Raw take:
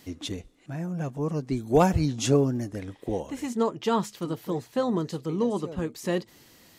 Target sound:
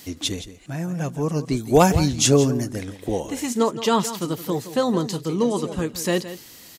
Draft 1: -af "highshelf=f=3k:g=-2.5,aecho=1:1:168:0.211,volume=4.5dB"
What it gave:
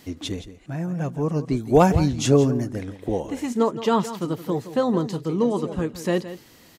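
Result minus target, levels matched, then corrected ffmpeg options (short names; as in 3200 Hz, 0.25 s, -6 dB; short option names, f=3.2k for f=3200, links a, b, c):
8000 Hz band -9.5 dB
-af "highshelf=f=3k:g=9.5,aecho=1:1:168:0.211,volume=4.5dB"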